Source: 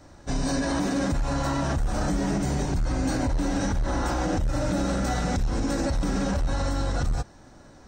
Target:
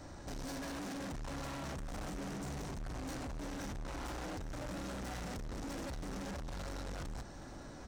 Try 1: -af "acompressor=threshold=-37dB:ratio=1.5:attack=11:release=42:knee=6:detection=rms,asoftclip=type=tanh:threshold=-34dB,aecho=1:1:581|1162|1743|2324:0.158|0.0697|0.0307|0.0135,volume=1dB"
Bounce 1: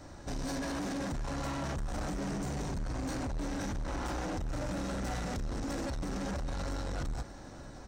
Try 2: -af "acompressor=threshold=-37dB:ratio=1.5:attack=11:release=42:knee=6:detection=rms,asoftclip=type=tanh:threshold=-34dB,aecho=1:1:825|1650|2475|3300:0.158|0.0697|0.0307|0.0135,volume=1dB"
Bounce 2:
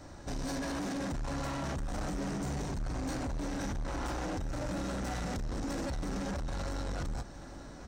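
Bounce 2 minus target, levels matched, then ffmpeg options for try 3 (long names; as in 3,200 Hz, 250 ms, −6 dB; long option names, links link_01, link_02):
soft clipping: distortion −4 dB
-af "acompressor=threshold=-37dB:ratio=1.5:attack=11:release=42:knee=6:detection=rms,asoftclip=type=tanh:threshold=-42dB,aecho=1:1:825|1650|2475|3300:0.158|0.0697|0.0307|0.0135,volume=1dB"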